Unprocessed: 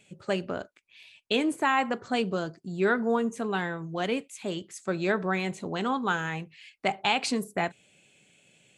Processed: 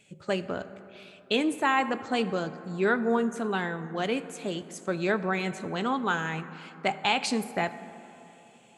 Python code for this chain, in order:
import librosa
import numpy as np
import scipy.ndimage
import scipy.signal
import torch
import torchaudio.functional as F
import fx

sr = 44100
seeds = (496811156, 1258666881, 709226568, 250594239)

y = fx.rev_plate(x, sr, seeds[0], rt60_s=3.4, hf_ratio=0.35, predelay_ms=0, drr_db=12.5)